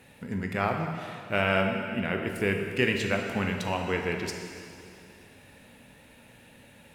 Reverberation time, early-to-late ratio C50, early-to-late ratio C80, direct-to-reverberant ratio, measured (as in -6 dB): 2.5 s, 4.0 dB, 5.0 dB, 2.5 dB